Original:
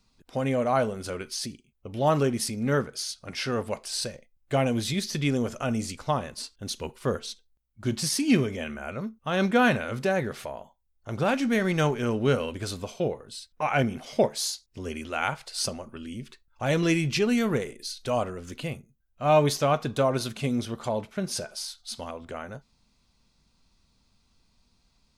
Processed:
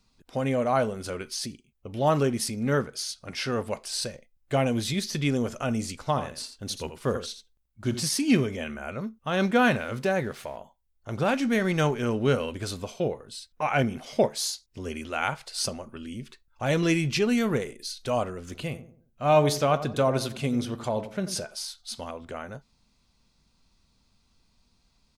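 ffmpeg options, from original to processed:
ffmpeg -i in.wav -filter_complex "[0:a]asettb=1/sr,asplit=3[link_01][link_02][link_03];[link_01]atrim=end=5.984[link_04];[link_02]atrim=start=5.98:end=8.05,asetpts=PTS-STARTPTS,afade=type=in:duration=0.004:curve=qsin,afade=type=out:start_time=2.066:duration=0.004:curve=qsin,aecho=1:1:83:0.299,atrim=end_sample=91287[link_05];[link_03]atrim=start=8.046[link_06];[link_04][link_05]acrossfade=duration=0.004:curve1=hsin:curve2=qsin[link_07];[link_07][link_06]acrossfade=duration=0.004:curve1=qsin:curve2=hsin,asettb=1/sr,asplit=3[link_08][link_09][link_10];[link_08]atrim=end=9.404[link_11];[link_09]atrim=start=9.4:end=10.57,asetpts=PTS-STARTPTS,afade=type=in:duration=0.004:curve=qsin,afade=type=out:start_time=1.166:duration=0.004:curve=qsin,aeval=exprs='sgn(val(0))*max(abs(val(0))-0.00211,0)':channel_layout=same[link_12];[link_10]atrim=start=10.566[link_13];[link_11][link_12]acrossfade=duration=0.004:curve1=hsin:curve2=qsin[link_14];[link_14][link_13]acrossfade=duration=0.004:curve1=qsin:curve2=hsin,asplit=3[link_15][link_16][link_17];[link_15]afade=type=out:start_time=18.49:duration=0.02[link_18];[link_16]asplit=2[link_19][link_20];[link_20]adelay=90,lowpass=frequency=1100:poles=1,volume=-11dB,asplit=2[link_21][link_22];[link_22]adelay=90,lowpass=frequency=1100:poles=1,volume=0.4,asplit=2[link_23][link_24];[link_24]adelay=90,lowpass=frequency=1100:poles=1,volume=0.4,asplit=2[link_25][link_26];[link_26]adelay=90,lowpass=frequency=1100:poles=1,volume=0.4[link_27];[link_19][link_21][link_23][link_25][link_27]amix=inputs=5:normalize=0,afade=type=in:start_time=18.49:duration=0.02,afade=type=out:start_time=21.38:duration=0.02[link_28];[link_17]afade=type=in:start_time=21.38:duration=0.02[link_29];[link_18][link_28][link_29]amix=inputs=3:normalize=0" out.wav

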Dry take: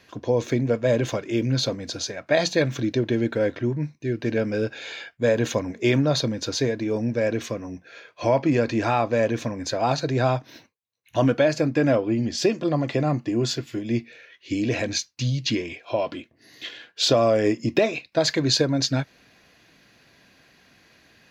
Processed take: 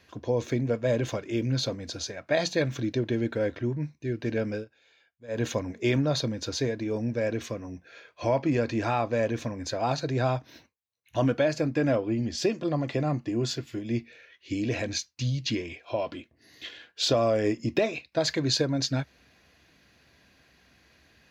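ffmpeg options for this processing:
ffmpeg -i in.wav -filter_complex "[0:a]asplit=3[link_01][link_02][link_03];[link_01]atrim=end=4.65,asetpts=PTS-STARTPTS,afade=type=out:start_time=4.49:duration=0.16:curve=qsin:silence=0.0841395[link_04];[link_02]atrim=start=4.65:end=5.28,asetpts=PTS-STARTPTS,volume=-21.5dB[link_05];[link_03]atrim=start=5.28,asetpts=PTS-STARTPTS,afade=type=in:duration=0.16:curve=qsin:silence=0.0841395[link_06];[link_04][link_05][link_06]concat=n=3:v=0:a=1,equalizer=frequency=67:width_type=o:width=0.57:gain=13,volume=-5dB" out.wav

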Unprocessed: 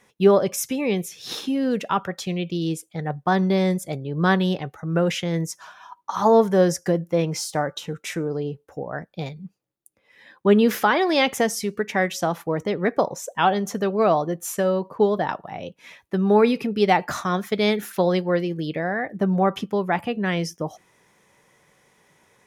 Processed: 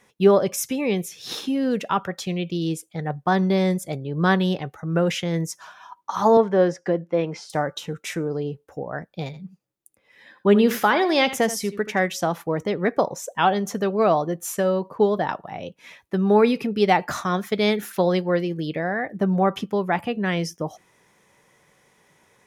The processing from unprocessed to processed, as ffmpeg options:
ffmpeg -i in.wav -filter_complex "[0:a]asettb=1/sr,asplit=3[link_01][link_02][link_03];[link_01]atrim=end=6.374[link_04];[link_02]atrim=start=6.37:end=7.5,asetpts=PTS-STARTPTS,afade=type=in:duration=0.004:curve=qsin,afade=type=out:start_time=1.126:duration=0.004:curve=qsin,highpass=210,lowpass=3000[link_05];[link_03]atrim=start=7.496[link_06];[link_04][link_05]acrossfade=duration=0.004:curve1=hsin:curve2=qsin[link_07];[link_07][link_06]acrossfade=duration=0.004:curve1=qsin:curve2=hsin,asettb=1/sr,asplit=3[link_08][link_09][link_10];[link_08]atrim=end=9.254[link_11];[link_09]atrim=start=9.25:end=12.02,asetpts=PTS-STARTPTS,afade=type=in:duration=0.004:curve=qsin,afade=type=out:start_time=2.766:duration=0.004:curve=qsin,aecho=1:1:80:0.2,atrim=end_sample=122157[link_12];[link_10]atrim=start=12.016[link_13];[link_11][link_12]acrossfade=duration=0.004:curve1=hsin:curve2=qsin[link_14];[link_14][link_13]acrossfade=duration=0.004:curve1=qsin:curve2=hsin" out.wav

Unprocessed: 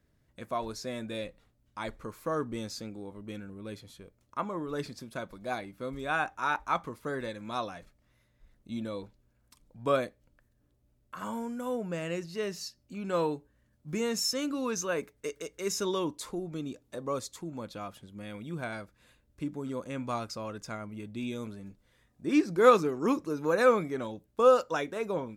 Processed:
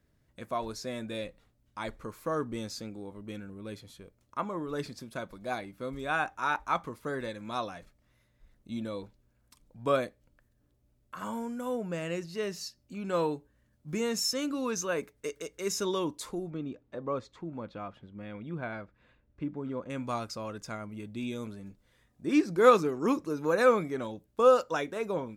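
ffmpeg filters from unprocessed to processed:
ffmpeg -i in.wav -filter_complex "[0:a]asettb=1/sr,asplit=3[link_01][link_02][link_03];[link_01]atrim=end=16.504[link_04];[link_02]atrim=start=16.5:end=19.9,asetpts=PTS-STARTPTS,afade=type=in:duration=0.004:curve=qsin,afade=type=out:start_time=3.396:duration=0.004:curve=qsin,lowpass=2400[link_05];[link_03]atrim=start=19.896[link_06];[link_04][link_05]acrossfade=duration=0.004:curve1=hsin:curve2=qsin[link_07];[link_07][link_06]acrossfade=duration=0.004:curve1=qsin:curve2=hsin" out.wav

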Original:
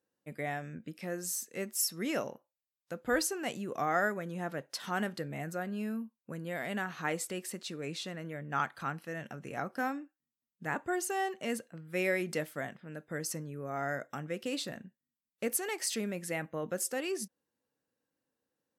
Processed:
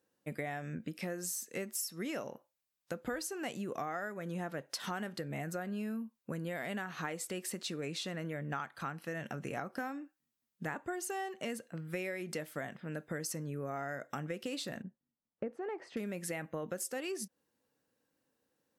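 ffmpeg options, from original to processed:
ffmpeg -i in.wav -filter_complex "[0:a]asettb=1/sr,asplit=3[link_01][link_02][link_03];[link_01]atrim=end=14.824[link_04];[link_02]atrim=start=14.82:end=15.97,asetpts=PTS-STARTPTS,afade=type=in:duration=0.004:curve=qsin,afade=type=out:start_time=1.146:duration=0.004:curve=qsin,lowpass=1000[link_05];[link_03]atrim=start=15.966[link_06];[link_04][link_05]acrossfade=duration=0.004:curve1=hsin:curve2=qsin[link_07];[link_07][link_06]acrossfade=duration=0.004:curve1=qsin:curve2=hsin,acompressor=threshold=-41dB:ratio=10,volume=5.5dB" out.wav

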